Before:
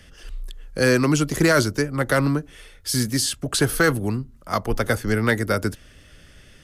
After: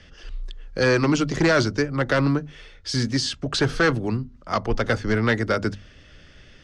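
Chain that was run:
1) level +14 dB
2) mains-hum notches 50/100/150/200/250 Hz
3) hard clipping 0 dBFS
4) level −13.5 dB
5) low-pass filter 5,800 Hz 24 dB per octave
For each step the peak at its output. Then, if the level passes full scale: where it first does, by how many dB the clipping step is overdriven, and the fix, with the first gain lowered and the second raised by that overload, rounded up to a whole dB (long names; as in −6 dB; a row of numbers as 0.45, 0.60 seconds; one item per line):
+5.5, +6.0, 0.0, −13.5, −12.0 dBFS
step 1, 6.0 dB
step 1 +8 dB, step 4 −7.5 dB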